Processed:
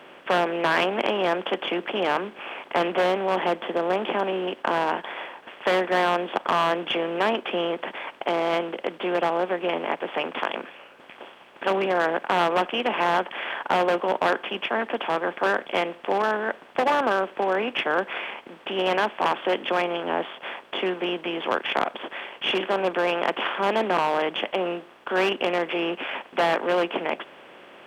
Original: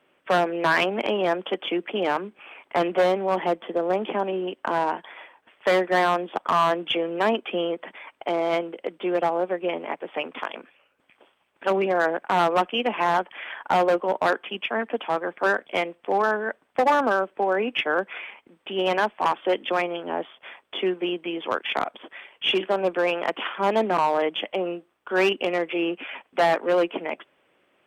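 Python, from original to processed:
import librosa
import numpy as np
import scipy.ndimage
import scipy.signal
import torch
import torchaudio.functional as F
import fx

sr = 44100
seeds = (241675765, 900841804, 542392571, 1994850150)

y = fx.bin_compress(x, sr, power=0.6)
y = F.gain(torch.from_numpy(y), -4.5).numpy()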